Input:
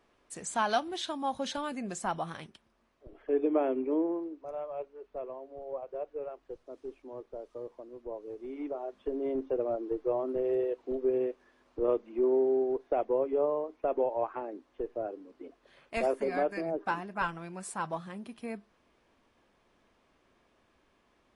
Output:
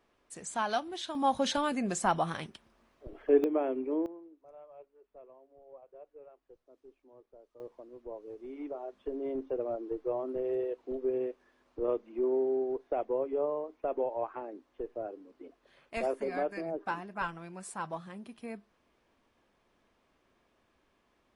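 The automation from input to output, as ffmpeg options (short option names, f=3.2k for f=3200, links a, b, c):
-af "asetnsamples=n=441:p=0,asendcmd='1.15 volume volume 5dB;3.44 volume volume -2.5dB;4.06 volume volume -14dB;7.6 volume volume -3dB',volume=-3dB"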